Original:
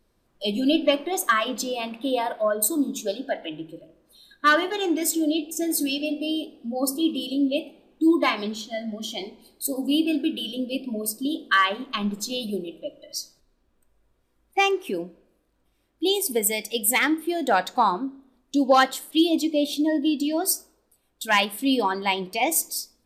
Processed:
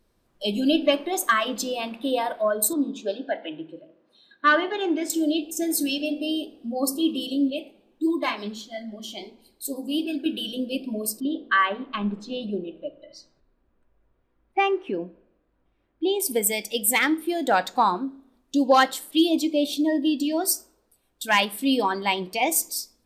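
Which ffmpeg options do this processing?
-filter_complex "[0:a]asettb=1/sr,asplit=3[a][b][c];[a]atrim=end=2.734[d];[b]atrim=start=2.73:end=5.1,asetpts=PTS-STARTPTS,afade=t=in:d=0.004:c=qsin,afade=t=out:st=2.366:d=0.004:c=qsin,highpass=190,lowpass=3.3k[e];[c]atrim=start=5.096[f];[d][e]acrossfade=d=0.004:c1=hsin:c2=qsin[g];[g][f]acrossfade=d=0.004:c1=qsin:c2=hsin,asettb=1/sr,asplit=3[h][i][j];[h]atrim=end=7.504[k];[i]atrim=start=7.5:end=10.26,asetpts=PTS-STARTPTS,afade=t=in:d=0.004:c=qsin,afade=t=out:st=2.756:d=0.004:c=qsin,flanger=delay=0.4:depth=9.6:regen=60:speed=1.5:shape=sinusoidal[l];[j]atrim=start=10.256[m];[k][l]acrossfade=d=0.004:c1=hsin:c2=qsin[n];[n][m]acrossfade=d=0.004:c1=qsin:c2=hsin,asettb=1/sr,asplit=3[o][p][q];[o]atrim=end=11.204[r];[p]atrim=start=11.2:end=16.2,asetpts=PTS-STARTPTS,afade=t=in:d=0.004:c=qsin,afade=t=out:st=4.996:d=0.004:c=qsin,lowpass=2.3k[s];[q]atrim=start=16.196[t];[r][s]acrossfade=d=0.004:c1=hsin:c2=qsin[u];[u][t]acrossfade=d=0.004:c1=qsin:c2=hsin"

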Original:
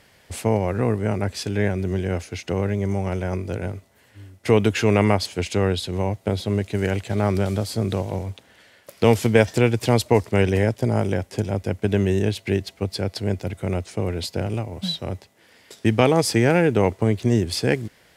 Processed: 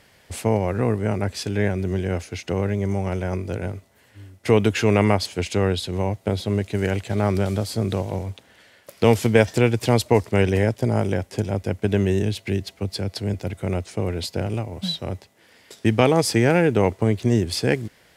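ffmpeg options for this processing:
-filter_complex "[0:a]asettb=1/sr,asplit=3[a][b][c];[a]atrim=end=12.224[d];[b]atrim=start=12.22:end=13.34,asetpts=PTS-STARTPTS,afade=t=in:d=0.004:c=qsin,afade=t=out:st=1.116:d=0.004:c=qsin,acrossover=split=310|3000[e][f][g];[f]acompressor=threshold=-29dB:ratio=6:attack=3.2:release=140:knee=2.83:detection=peak[h];[e][h][g]amix=inputs=3:normalize=0[i];[c]atrim=start=13.336[j];[d][i]acrossfade=d=0.004:c1=hsin:c2=qsin[k];[k][j]acrossfade=d=0.004:c1=qsin:c2=hsin"

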